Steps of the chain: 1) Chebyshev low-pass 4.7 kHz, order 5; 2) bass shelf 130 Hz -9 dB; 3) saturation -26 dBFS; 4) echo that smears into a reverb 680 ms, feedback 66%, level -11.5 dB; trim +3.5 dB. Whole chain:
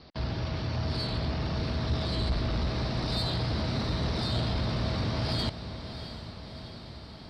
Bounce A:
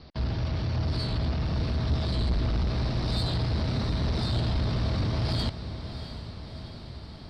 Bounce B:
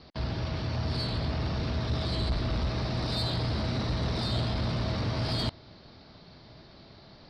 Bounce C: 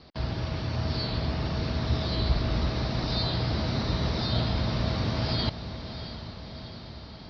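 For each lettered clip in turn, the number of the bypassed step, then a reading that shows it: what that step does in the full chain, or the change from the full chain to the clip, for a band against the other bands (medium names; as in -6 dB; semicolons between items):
2, 125 Hz band +4.0 dB; 4, echo-to-direct -9.0 dB to none; 3, distortion -16 dB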